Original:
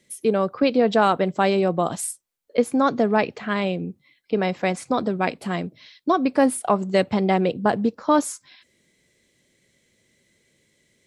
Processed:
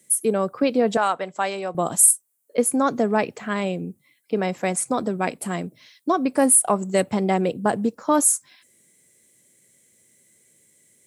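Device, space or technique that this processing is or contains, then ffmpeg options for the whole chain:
budget condenser microphone: -filter_complex "[0:a]highpass=90,highshelf=frequency=6400:width_type=q:width=1.5:gain=14,asettb=1/sr,asplit=3[link_01][link_02][link_03];[link_01]atrim=end=0.974[link_04];[link_02]atrim=start=0.97:end=1.75,asetpts=PTS-STARTPTS,afade=type=in:duration=0.004:curve=qsin,afade=type=out:start_time=0.776:duration=0.004:curve=qsin,acrossover=split=580 7600:gain=0.2 1 0.0708[link_05][link_06][link_07];[link_05][link_06][link_07]amix=inputs=3:normalize=0[link_08];[link_03]atrim=start=1.746[link_09];[link_04][link_08]acrossfade=duration=0.004:curve1=hsin:curve2=qsin[link_10];[link_10][link_09]acrossfade=duration=0.004:curve1=qsin:curve2=hsin,volume=-1dB"

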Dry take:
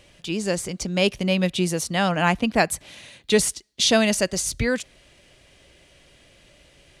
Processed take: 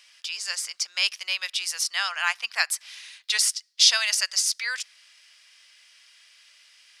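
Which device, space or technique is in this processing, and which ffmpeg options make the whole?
headphones lying on a table: -af "highpass=frequency=1200:width=0.5412,highpass=frequency=1200:width=1.3066,equalizer=frequency=5100:width_type=o:width=0.31:gain=10.5"

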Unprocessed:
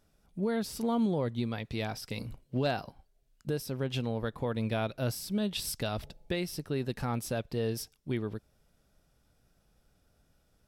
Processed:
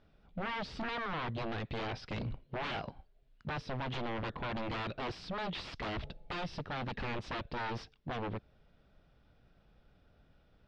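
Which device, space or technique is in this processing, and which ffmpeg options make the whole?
synthesiser wavefolder: -af "aeval=exprs='0.0168*(abs(mod(val(0)/0.0168+3,4)-2)-1)':channel_layout=same,lowpass=frequency=3800:width=0.5412,lowpass=frequency=3800:width=1.3066,volume=3.5dB"

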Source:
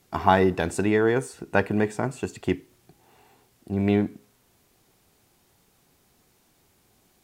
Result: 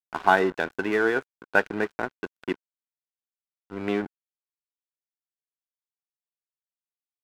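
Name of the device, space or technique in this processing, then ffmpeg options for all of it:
pocket radio on a weak battery: -af "highpass=280,lowpass=4100,aeval=exprs='sgn(val(0))*max(abs(val(0))-0.0188,0)':channel_layout=same,equalizer=frequency=1500:width_type=o:width=0.23:gain=9"

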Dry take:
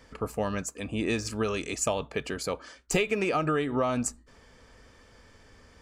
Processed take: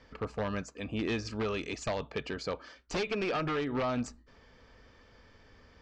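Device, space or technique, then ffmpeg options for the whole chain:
synthesiser wavefolder: -af "aeval=exprs='0.075*(abs(mod(val(0)/0.075+3,4)-2)-1)':channel_layout=same,lowpass=frequency=5300:width=0.5412,lowpass=frequency=5300:width=1.3066,volume=-3dB"

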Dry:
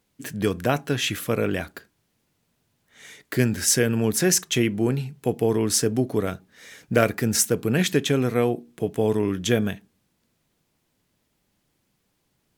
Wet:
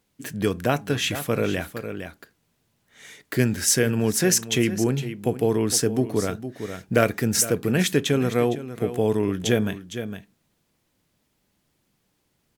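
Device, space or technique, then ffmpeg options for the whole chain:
ducked delay: -filter_complex "[0:a]asplit=3[link_01][link_02][link_03];[link_02]adelay=459,volume=-7dB[link_04];[link_03]apad=whole_len=574872[link_05];[link_04][link_05]sidechaincompress=threshold=-23dB:ratio=8:attack=28:release=994[link_06];[link_01][link_06]amix=inputs=2:normalize=0"

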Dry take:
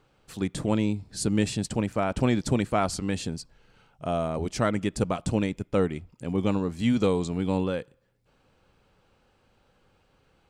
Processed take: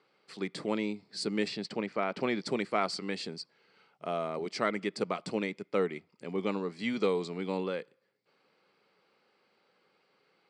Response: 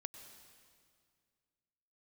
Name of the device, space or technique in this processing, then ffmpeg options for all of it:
television speaker: -filter_complex "[0:a]asettb=1/sr,asplit=3[link_01][link_02][link_03];[link_01]atrim=end=1.484[link_04];[link_02]atrim=start=1.48:end=2.41,asetpts=PTS-STARTPTS,afade=type=in:duration=0.004:curve=qsin,afade=type=out:start_time=0.926:duration=0.004:curve=qsin,lowpass=5500[link_05];[link_03]atrim=start=2.406[link_06];[link_04][link_05]acrossfade=duration=0.004:curve1=hsin:curve2=qsin[link_07];[link_07][link_06]acrossfade=duration=0.004:curve1=qsin:curve2=hsin,highpass=frequency=190:width=0.5412,highpass=frequency=190:width=1.3066,equalizer=frequency=260:width_type=q:width=4:gain=-5,equalizer=frequency=410:width_type=q:width=4:gain=5,equalizer=frequency=1200:width_type=q:width=4:gain=4,equalizer=frequency=2100:width_type=q:width=4:gain=9,equalizer=frequency=4600:width_type=q:width=4:gain=10,equalizer=frequency=6600:width_type=q:width=4:gain=-8,lowpass=frequency=8000:width=0.5412,lowpass=frequency=8000:width=1.3066,volume=-6dB"

